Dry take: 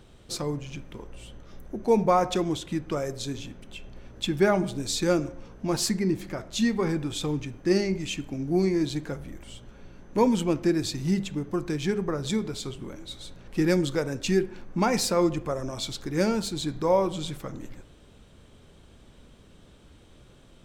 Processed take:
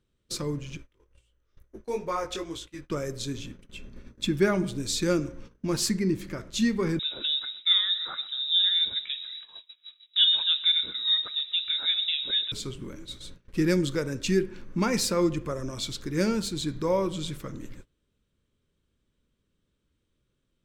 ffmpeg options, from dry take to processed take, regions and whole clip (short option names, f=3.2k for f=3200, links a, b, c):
-filter_complex "[0:a]asettb=1/sr,asplit=3[a][b][c];[a]atrim=end=0.774[d];[b]atrim=start=0.77:end=2.9,asetpts=PTS-STARTPTS,afade=t=in:d=0.004:c=qsin,afade=t=out:st=2.126:d=0.004:c=qsin,equalizer=f=190:w=1.3:g=-14.5,flanger=delay=17.5:depth=3.2:speed=2.2[e];[c]atrim=start=2.896[f];[d][e]acrossfade=d=0.004:c1=hsin:c2=qsin[g];[g][f]acrossfade=d=0.004:c1=qsin:c2=hsin,asettb=1/sr,asplit=3[h][i][j];[h]atrim=end=3.764[k];[i]atrim=start=3.76:end=4.36,asetpts=PTS-STARTPTS,afade=t=in:d=0.004:c=qsin,afade=t=out:st=0.596:d=0.004:c=qsin,equalizer=f=240:t=o:w=0.5:g=6.5,bandreject=f=3k:w=8.4[l];[j]atrim=start=4.356[m];[k][l]acrossfade=d=0.004:c1=hsin:c2=qsin[n];[n][m]acrossfade=d=0.004:c1=qsin:c2=hsin,asettb=1/sr,asplit=3[o][p][q];[o]atrim=end=6.994[r];[p]atrim=start=6.99:end=12.52,asetpts=PTS-STARTPTS,afade=t=in:d=0.004:c=qsin,afade=t=out:st=5.526:d=0.004:c=qsin,aecho=1:1:126|252|378|504:0.106|0.0519|0.0254|0.0125,atrim=end_sample=243873,lowpass=f=3.3k:t=q:w=0.5098,lowpass=f=3.3k:t=q:w=0.6013,lowpass=f=3.3k:t=q:w=0.9,lowpass=f=3.3k:t=q:w=2.563,afreqshift=-3900[s];[q]atrim=start=12.516[t];[r][s]acrossfade=d=0.004:c1=hsin:c2=qsin[u];[u][t]acrossfade=d=0.004:c1=qsin:c2=hsin,agate=range=-22dB:threshold=-42dB:ratio=16:detection=peak,equalizer=f=750:t=o:w=0.52:g=-12.5"